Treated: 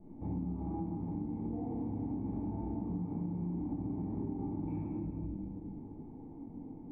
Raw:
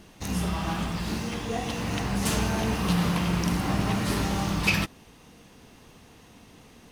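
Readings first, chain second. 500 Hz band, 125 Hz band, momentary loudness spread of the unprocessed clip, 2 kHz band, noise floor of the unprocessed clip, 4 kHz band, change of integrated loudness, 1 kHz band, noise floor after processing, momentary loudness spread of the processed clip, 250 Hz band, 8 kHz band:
-12.5 dB, -10.0 dB, 6 LU, under -40 dB, -53 dBFS, under -40 dB, -11.5 dB, -17.0 dB, -49 dBFS, 10 LU, -7.0 dB, under -40 dB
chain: cascade formant filter u; simulated room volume 940 m³, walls mixed, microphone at 5.9 m; compression 12:1, threshold -35 dBFS, peak gain reduction 18 dB; trim +1 dB

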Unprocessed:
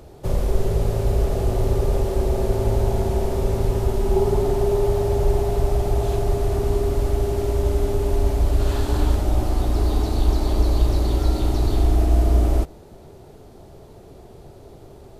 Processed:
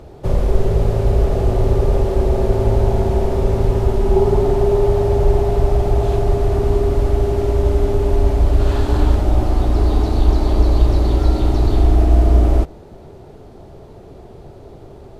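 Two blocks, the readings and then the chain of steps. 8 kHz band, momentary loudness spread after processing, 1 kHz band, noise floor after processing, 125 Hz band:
-3.0 dB, 3 LU, +4.5 dB, -40 dBFS, +5.0 dB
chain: low-pass 3.1 kHz 6 dB/octave; trim +5 dB

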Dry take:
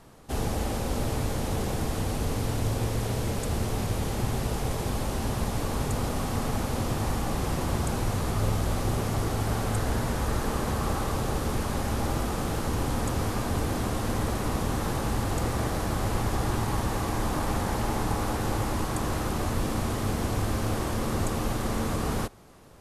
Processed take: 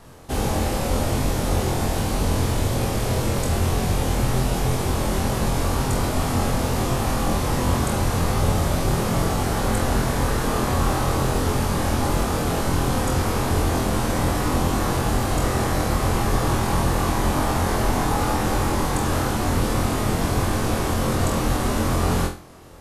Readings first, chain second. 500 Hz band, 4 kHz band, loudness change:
+7.0 dB, +7.5 dB, +6.5 dB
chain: vibrato 11 Hz 23 cents; flutter echo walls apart 4 m, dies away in 0.36 s; trim +5 dB

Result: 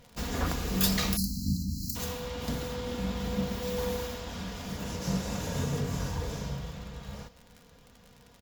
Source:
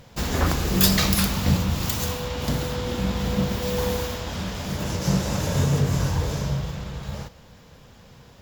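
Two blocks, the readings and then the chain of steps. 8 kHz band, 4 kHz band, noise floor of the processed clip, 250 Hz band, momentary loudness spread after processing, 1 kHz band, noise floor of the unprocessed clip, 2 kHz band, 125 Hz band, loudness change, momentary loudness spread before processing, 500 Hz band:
-8.0 dB, -8.5 dB, -57 dBFS, -7.5 dB, 11 LU, -8.5 dB, -50 dBFS, -8.5 dB, -10.0 dB, -8.5 dB, 11 LU, -7.0 dB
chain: crackle 44 per s -31 dBFS; comb 4.2 ms, depth 39%; spectral selection erased 1.17–1.96 s, 310–4000 Hz; trim -8.5 dB

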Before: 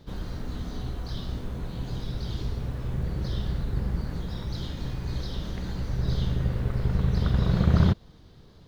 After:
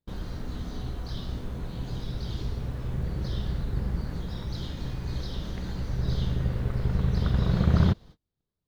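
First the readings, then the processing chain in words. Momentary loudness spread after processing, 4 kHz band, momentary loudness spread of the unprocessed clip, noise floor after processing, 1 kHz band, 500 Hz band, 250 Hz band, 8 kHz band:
12 LU, -1.0 dB, 12 LU, -85 dBFS, -1.0 dB, -1.0 dB, -1.0 dB, no reading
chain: gate -44 dBFS, range -34 dB; trim -1 dB

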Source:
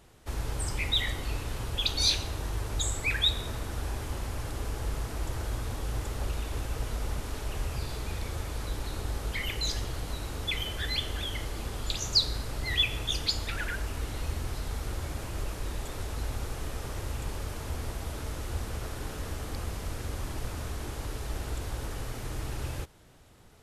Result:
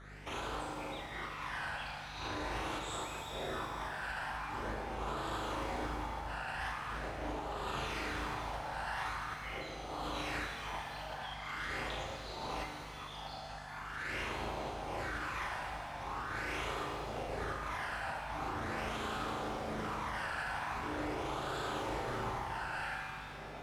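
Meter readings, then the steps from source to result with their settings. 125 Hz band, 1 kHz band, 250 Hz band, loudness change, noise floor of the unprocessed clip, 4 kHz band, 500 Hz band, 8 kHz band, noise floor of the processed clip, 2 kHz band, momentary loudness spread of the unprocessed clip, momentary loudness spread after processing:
-12.0 dB, +5.0 dB, -2.5 dB, -6.5 dB, -40 dBFS, -14.0 dB, -0.5 dB, -13.5 dB, -46 dBFS, -1.0 dB, 11 LU, 5 LU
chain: phase shifter stages 12, 0.43 Hz, lowest notch 360–2000 Hz; on a send: flutter echo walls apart 6.3 m, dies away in 0.64 s; on the sum: LFO band-pass sine 0.8 Hz 720–1500 Hz; compressor with a negative ratio -54 dBFS, ratio -0.5; hum 50 Hz, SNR 14 dB; peak limiter -46 dBFS, peak gain reduction 7.5 dB; pitch-shifted reverb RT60 2.7 s, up +7 st, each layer -8 dB, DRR 1.5 dB; trim +14 dB

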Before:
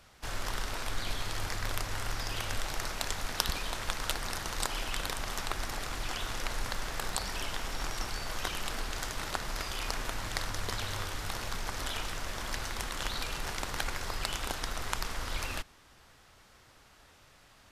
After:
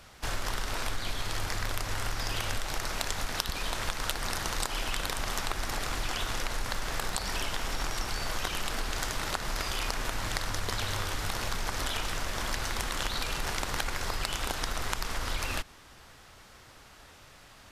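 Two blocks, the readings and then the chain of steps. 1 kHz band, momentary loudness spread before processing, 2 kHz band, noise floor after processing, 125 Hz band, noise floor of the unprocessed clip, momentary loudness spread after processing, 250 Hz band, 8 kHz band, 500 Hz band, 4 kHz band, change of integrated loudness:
+3.0 dB, 3 LU, +3.0 dB, -54 dBFS, +3.0 dB, -60 dBFS, 12 LU, +3.0 dB, +2.5 dB, +3.0 dB, +2.5 dB, +3.0 dB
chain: compression, threshold -33 dBFS, peak gain reduction 10.5 dB; trim +6 dB

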